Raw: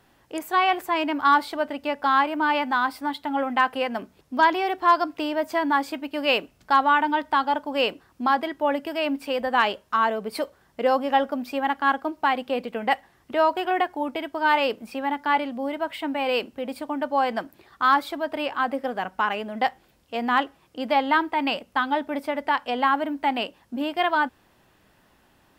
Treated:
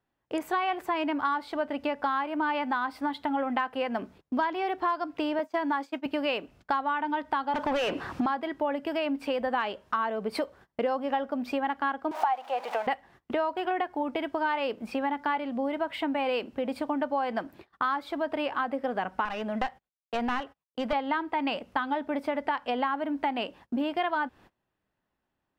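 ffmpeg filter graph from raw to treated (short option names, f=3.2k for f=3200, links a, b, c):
-filter_complex "[0:a]asettb=1/sr,asplit=3[a][b][c];[a]atrim=end=5.394[d];[b]atrim=start=5.39:end=6.06,asetpts=PTS-STARTPTS,afade=t=in:d=0.004:c=qsin,afade=t=out:st=0.666:d=0.004:c=qsin,agate=range=-33dB:threshold=-29dB:ratio=3:release=100:detection=peak,highpass=210,equalizer=f=6.3k:t=o:w=0.58:g=4.5[e];[c]atrim=start=6.056[f];[d][e]acrossfade=d=0.004:c1=hsin:c2=qsin[g];[g][f]acrossfade=d=0.004:c1=qsin:c2=hsin,asettb=1/sr,asplit=3[h][i][j];[h]atrim=end=7.544[k];[i]atrim=start=7.54:end=8.26,asetpts=PTS-STARTPTS,afade=t=in:d=0.004:c=qsin,afade=t=out:st=0.716:d=0.004:c=qsin,equalizer=f=78:w=0.38:g=13.5,acrossover=split=520|3100[l][m][n];[l]acompressor=threshold=-34dB:ratio=4[o];[m]acompressor=threshold=-30dB:ratio=4[p];[n]acompressor=threshold=-38dB:ratio=4[q];[o][p][q]amix=inputs=3:normalize=0,asplit=2[r][s];[s]highpass=f=720:p=1,volume=26dB,asoftclip=type=tanh:threshold=-16dB[t];[r][t]amix=inputs=2:normalize=0,lowpass=f=4.5k:p=1,volume=-6dB[u];[j]atrim=start=8.256[v];[k][u]acrossfade=d=0.004:c1=hsin:c2=qsin[w];[w][v]acrossfade=d=0.004:c1=qsin:c2=hsin,asettb=1/sr,asplit=3[x][y][z];[x]atrim=end=12.114[aa];[y]atrim=start=12.11:end=12.87,asetpts=PTS-STARTPTS,afade=t=in:d=0.004:c=qsin,afade=t=out:st=0.756:d=0.004:c=qsin,aeval=exprs='val(0)+0.5*0.0211*sgn(val(0))':c=same,highpass=f=780:t=q:w=4.6[ab];[z]atrim=start=12.866[ac];[aa][ab]acrossfade=d=0.004:c1=hsin:c2=qsin[ad];[ad][ac]acrossfade=d=0.004:c1=qsin:c2=hsin,asettb=1/sr,asplit=3[ae][af][ag];[ae]atrim=end=19.254[ah];[af]atrim=start=19.25:end=20.93,asetpts=PTS-STARTPTS,afade=t=in:d=0.004:c=qsin,afade=t=out:st=1.676:d=0.004:c=qsin,equalizer=f=330:w=3.3:g=-11.5,agate=range=-33dB:threshold=-52dB:ratio=16:release=100:detection=peak,aeval=exprs='clip(val(0),-1,0.0335)':c=same[ai];[ag]atrim=start=20.926[aj];[ah][ai]acrossfade=d=0.004:c1=hsin:c2=qsin[ak];[ak][aj]acrossfade=d=0.004:c1=qsin:c2=hsin,lowpass=f=2.8k:p=1,agate=range=-25dB:threshold=-50dB:ratio=16:detection=peak,acompressor=threshold=-30dB:ratio=6,volume=4dB"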